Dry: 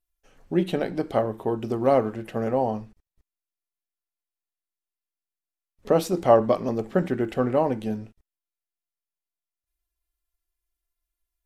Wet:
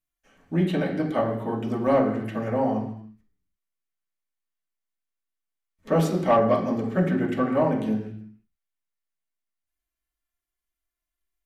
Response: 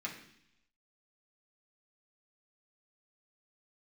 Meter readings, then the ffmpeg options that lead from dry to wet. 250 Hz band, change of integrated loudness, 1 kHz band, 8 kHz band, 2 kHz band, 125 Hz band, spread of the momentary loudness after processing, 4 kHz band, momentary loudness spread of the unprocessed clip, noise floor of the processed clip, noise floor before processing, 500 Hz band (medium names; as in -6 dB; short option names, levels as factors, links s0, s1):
+2.5 dB, 0.0 dB, 0.0 dB, -2.5 dB, +3.0 dB, +3.5 dB, 9 LU, -1.0 dB, 11 LU, under -85 dBFS, under -85 dBFS, -1.5 dB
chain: -filter_complex "[1:a]atrim=start_sample=2205,afade=t=out:st=0.37:d=0.01,atrim=end_sample=16758,asetrate=38808,aresample=44100[s0];[0:a][s0]afir=irnorm=-1:irlink=0,asoftclip=type=tanh:threshold=0.299"